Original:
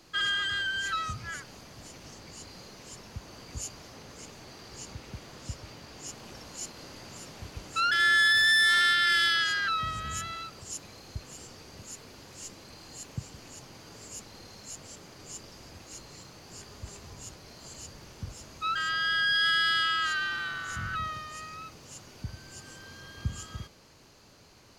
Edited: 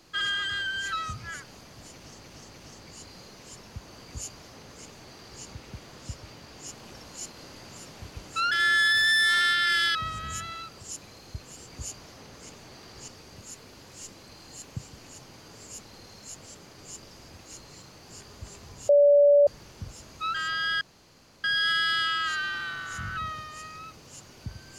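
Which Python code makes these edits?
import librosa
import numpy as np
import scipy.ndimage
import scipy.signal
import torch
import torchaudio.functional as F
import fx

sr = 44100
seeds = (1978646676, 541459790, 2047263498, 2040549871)

y = fx.edit(x, sr, fx.repeat(start_s=1.94, length_s=0.3, count=3),
    fx.duplicate(start_s=3.44, length_s=1.4, to_s=11.49),
    fx.cut(start_s=9.35, length_s=0.41),
    fx.bleep(start_s=17.3, length_s=0.58, hz=576.0, db=-14.0),
    fx.insert_room_tone(at_s=19.22, length_s=0.63), tone=tone)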